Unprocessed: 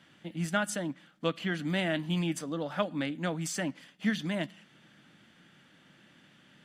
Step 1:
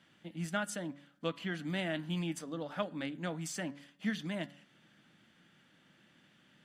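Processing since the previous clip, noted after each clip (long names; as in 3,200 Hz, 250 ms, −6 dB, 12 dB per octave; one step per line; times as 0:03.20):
hum removal 142.1 Hz, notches 14
level −5.5 dB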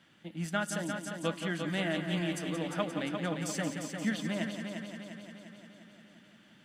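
echo machine with several playback heads 175 ms, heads first and second, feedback 64%, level −9 dB
level +2.5 dB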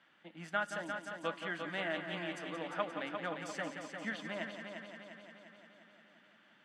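resonant band-pass 1,200 Hz, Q 0.72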